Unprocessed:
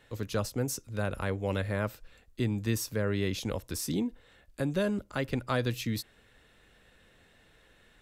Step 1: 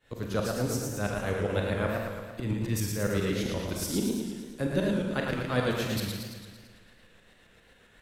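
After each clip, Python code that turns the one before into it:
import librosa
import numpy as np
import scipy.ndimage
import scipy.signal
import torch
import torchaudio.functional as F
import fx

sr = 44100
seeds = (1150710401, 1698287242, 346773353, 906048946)

y = fx.tremolo_shape(x, sr, shape='saw_up', hz=7.5, depth_pct=90)
y = fx.rev_schroeder(y, sr, rt60_s=0.8, comb_ms=32, drr_db=3.0)
y = fx.echo_warbled(y, sr, ms=112, feedback_pct=62, rate_hz=2.8, cents=162, wet_db=-4.0)
y = y * 10.0 ** (3.0 / 20.0)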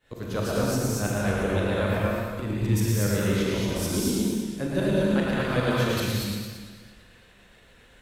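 y = fx.rev_gated(x, sr, seeds[0], gate_ms=260, shape='rising', drr_db=-2.5)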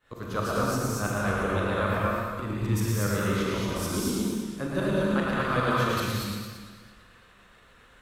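y = fx.peak_eq(x, sr, hz=1200.0, db=11.5, octaves=0.55)
y = y * 10.0 ** (-3.0 / 20.0)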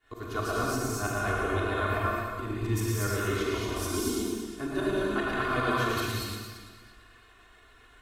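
y = x + 1.0 * np.pad(x, (int(2.8 * sr / 1000.0), 0))[:len(x)]
y = y * 10.0 ** (-4.0 / 20.0)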